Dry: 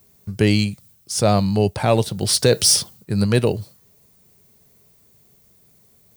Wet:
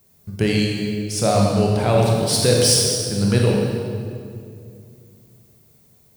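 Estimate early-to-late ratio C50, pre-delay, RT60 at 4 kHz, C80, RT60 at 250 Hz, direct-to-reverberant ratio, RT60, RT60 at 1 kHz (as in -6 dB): -0.5 dB, 26 ms, 1.7 s, 1.5 dB, 3.1 s, -2.0 dB, 2.4 s, 2.1 s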